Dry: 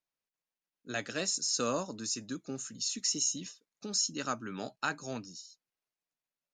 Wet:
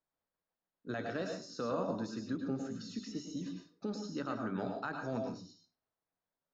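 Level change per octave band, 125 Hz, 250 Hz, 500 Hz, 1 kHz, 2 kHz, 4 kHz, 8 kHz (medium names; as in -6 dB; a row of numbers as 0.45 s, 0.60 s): +2.5 dB, +2.5 dB, +0.5 dB, -2.5 dB, -5.5 dB, -15.0 dB, -23.5 dB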